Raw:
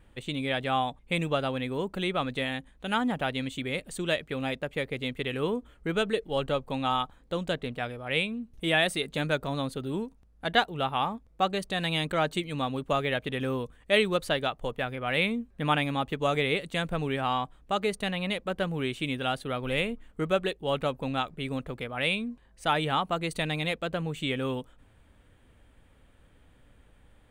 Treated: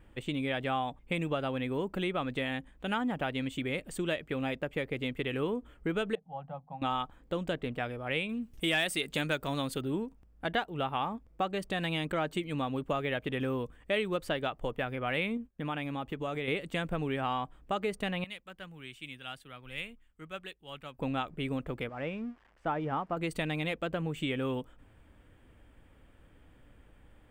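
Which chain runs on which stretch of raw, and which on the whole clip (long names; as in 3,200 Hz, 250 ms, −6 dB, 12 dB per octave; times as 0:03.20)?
0:06.15–0:06.82: pair of resonant band-passes 360 Hz, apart 2.2 octaves + mains-hum notches 50/100/150/200/250/300/350 Hz
0:08.29–0:09.81: high-shelf EQ 2,100 Hz +11.5 dB + hard clipping −11 dBFS
0:15.37–0:16.48: downward compressor 2 to 1, threshold −37 dBFS + downward expander −46 dBFS
0:18.24–0:20.99: guitar amp tone stack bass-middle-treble 5-5-5 + multiband upward and downward expander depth 40%
0:21.89–0:23.17: spike at every zero crossing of −24.5 dBFS + low-pass filter 1,300 Hz + expander for the loud parts, over −44 dBFS
whole clip: thirty-one-band graphic EQ 315 Hz +4 dB, 4,000 Hz −8 dB, 6,300 Hz −5 dB, 10,000 Hz −8 dB; downward compressor 2.5 to 1, threshold −30 dBFS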